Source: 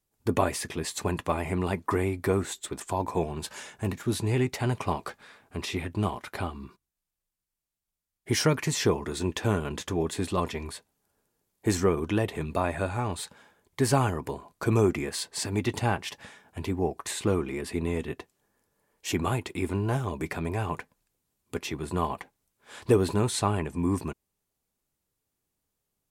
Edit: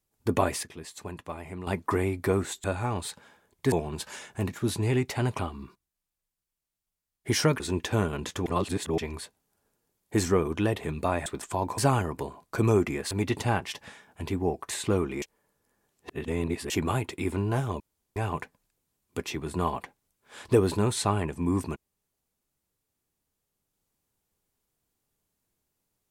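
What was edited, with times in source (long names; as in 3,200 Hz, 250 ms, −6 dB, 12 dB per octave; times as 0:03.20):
0:00.63–0:01.67: clip gain −10 dB
0:02.64–0:03.16: swap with 0:12.78–0:13.86
0:04.83–0:06.40: remove
0:08.61–0:09.12: remove
0:09.98–0:10.50: reverse
0:15.19–0:15.48: remove
0:17.59–0:19.07: reverse
0:20.17–0:20.53: fill with room tone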